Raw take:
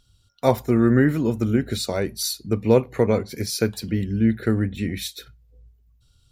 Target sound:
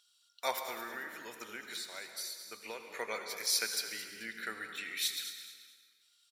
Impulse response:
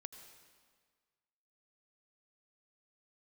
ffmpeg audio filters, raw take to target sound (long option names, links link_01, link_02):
-filter_complex "[0:a]highpass=1500,asettb=1/sr,asplit=3[link_01][link_02][link_03];[link_01]atrim=end=0.664[link_04];[link_02]atrim=start=0.66:end=2.97,asetpts=PTS-STARTPTS,afade=type=in:duration=0.004:curve=qsin,afade=type=out:start_time=2.306:duration=0.004:curve=qsin,acompressor=threshold=-39dB:ratio=6[link_05];[link_03]atrim=start=2.966[link_06];[link_04][link_05]acrossfade=duration=0.004:curve1=hsin:curve2=qsin[link_07];[link_07][link_06]acrossfade=duration=0.004:curve1=qsin:curve2=hsin,asplit=4[link_08][link_09][link_10][link_11];[link_09]adelay=218,afreqshift=-31,volume=-12dB[link_12];[link_10]adelay=436,afreqshift=-62,volume=-21.9dB[link_13];[link_11]adelay=654,afreqshift=-93,volume=-31.8dB[link_14];[link_08][link_12][link_13][link_14]amix=inputs=4:normalize=0[link_15];[1:a]atrim=start_sample=2205[link_16];[link_15][link_16]afir=irnorm=-1:irlink=0,volume=4dB"